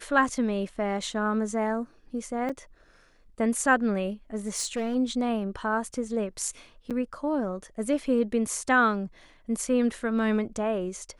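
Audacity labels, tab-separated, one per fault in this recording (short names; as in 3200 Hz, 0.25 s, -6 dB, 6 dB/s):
2.490000	2.500000	gap 5.1 ms
4.470000	4.960000	clipped -24.5 dBFS
6.900000	6.910000	gap 7.2 ms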